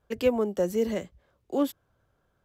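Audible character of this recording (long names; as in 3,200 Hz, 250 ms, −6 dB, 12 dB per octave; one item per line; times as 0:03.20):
background noise floor −73 dBFS
spectral slope −4.5 dB per octave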